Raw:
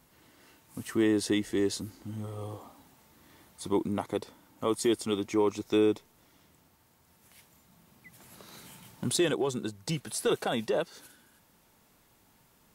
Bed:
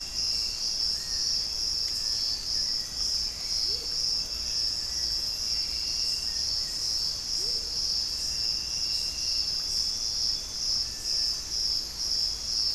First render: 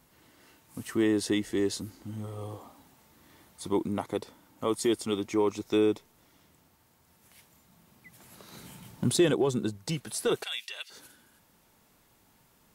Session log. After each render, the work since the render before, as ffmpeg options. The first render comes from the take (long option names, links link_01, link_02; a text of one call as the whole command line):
ffmpeg -i in.wav -filter_complex "[0:a]asettb=1/sr,asplit=3[link_01][link_02][link_03];[link_01]atrim=end=8.524[link_04];[link_02]atrim=start=8.52:end=9.78,asetpts=PTS-STARTPTS,afade=type=in:duration=0.004:curve=qsin,afade=type=out:start_time=1.256:duration=0.004:curve=qsin,lowshelf=frequency=420:gain=6.5[link_05];[link_03]atrim=start=9.776[link_06];[link_04][link_05]acrossfade=duration=0.004:curve1=hsin:curve2=qsin[link_07];[link_07][link_06]acrossfade=duration=0.004:curve1=qsin:curve2=hsin,asettb=1/sr,asplit=3[link_08][link_09][link_10];[link_08]atrim=end=10.434[link_11];[link_09]atrim=start=10.43:end=10.9,asetpts=PTS-STARTPTS,afade=type=in:duration=0.004:curve=qsin,afade=type=out:start_time=0.466:duration=0.004:curve=qsin,highpass=frequency=2600:width_type=q:width=1.9[link_12];[link_10]atrim=start=10.896[link_13];[link_11][link_12]acrossfade=duration=0.004:curve1=hsin:curve2=qsin[link_14];[link_14][link_13]acrossfade=duration=0.004:curve1=qsin:curve2=hsin" out.wav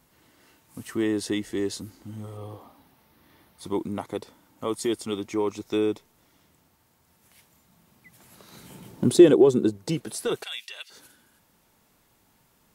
ffmpeg -i in.wav -filter_complex "[0:a]asettb=1/sr,asplit=3[link_01][link_02][link_03];[link_01]atrim=end=2.374[link_04];[link_02]atrim=start=2.37:end=3.63,asetpts=PTS-STARTPTS,afade=type=in:duration=0.004:curve=qsin,afade=type=out:start_time=1.256:duration=0.004:curve=qsin,equalizer=frequency=7500:width_type=o:width=0.56:gain=-11[link_05];[link_03]atrim=start=3.626[link_06];[link_04][link_05]acrossfade=duration=0.004:curve1=hsin:curve2=qsin[link_07];[link_07][link_06]acrossfade=duration=0.004:curve1=qsin:curve2=hsin,asettb=1/sr,asplit=3[link_08][link_09][link_10];[link_08]atrim=end=8.704[link_11];[link_09]atrim=start=8.7:end=10.16,asetpts=PTS-STARTPTS,afade=type=in:duration=0.004:curve=qsin,afade=type=out:start_time=1.456:duration=0.004:curve=qsin,equalizer=frequency=370:width_type=o:width=1.5:gain=11[link_12];[link_10]atrim=start=10.156[link_13];[link_11][link_12]acrossfade=duration=0.004:curve1=hsin:curve2=qsin[link_14];[link_14][link_13]acrossfade=duration=0.004:curve1=qsin:curve2=hsin" out.wav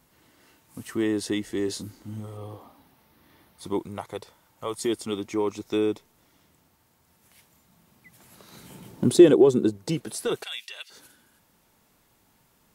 ffmpeg -i in.wav -filter_complex "[0:a]asettb=1/sr,asplit=3[link_01][link_02][link_03];[link_01]atrim=end=1.654[link_04];[link_02]atrim=start=1.65:end=2.2,asetpts=PTS-STARTPTS,afade=type=in:duration=0.004:curve=qsin,afade=type=out:start_time=0.546:duration=0.004:curve=qsin,asplit=2[link_05][link_06];[link_06]adelay=28,volume=-7dB[link_07];[link_05][link_07]amix=inputs=2:normalize=0,atrim=end_sample=24255[link_08];[link_03]atrim=start=2.196[link_09];[link_04][link_08]acrossfade=duration=0.004:curve1=hsin:curve2=qsin[link_10];[link_10][link_09]acrossfade=duration=0.004:curve1=qsin:curve2=hsin,asettb=1/sr,asplit=3[link_11][link_12][link_13];[link_11]atrim=end=3.794[link_14];[link_12]atrim=start=3.79:end=4.77,asetpts=PTS-STARTPTS,afade=type=in:duration=0.004:curve=qsin,afade=type=out:start_time=0.976:duration=0.004:curve=qsin,equalizer=frequency=260:width_type=o:width=0.77:gain=-13.5[link_15];[link_13]atrim=start=4.766[link_16];[link_14][link_15]acrossfade=duration=0.004:curve1=hsin:curve2=qsin[link_17];[link_17][link_16]acrossfade=duration=0.004:curve1=qsin:curve2=hsin" out.wav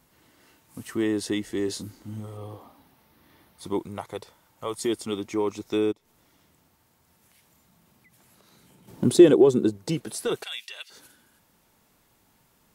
ffmpeg -i in.wav -filter_complex "[0:a]asplit=3[link_01][link_02][link_03];[link_01]afade=type=out:start_time=5.91:duration=0.02[link_04];[link_02]acompressor=threshold=-57dB:ratio=3:attack=3.2:release=140:knee=1:detection=peak,afade=type=in:start_time=5.91:duration=0.02,afade=type=out:start_time=8.87:duration=0.02[link_05];[link_03]afade=type=in:start_time=8.87:duration=0.02[link_06];[link_04][link_05][link_06]amix=inputs=3:normalize=0" out.wav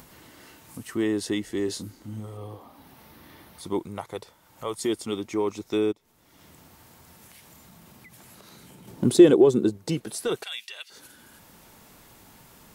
ffmpeg -i in.wav -af "acompressor=mode=upward:threshold=-40dB:ratio=2.5" out.wav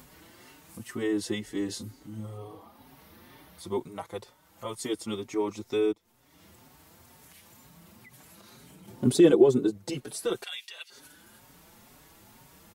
ffmpeg -i in.wav -filter_complex "[0:a]asplit=2[link_01][link_02];[link_02]adelay=5.1,afreqshift=2.1[link_03];[link_01][link_03]amix=inputs=2:normalize=1" out.wav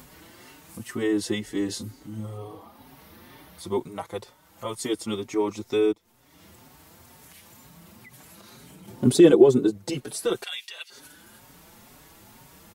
ffmpeg -i in.wav -af "volume=4dB" out.wav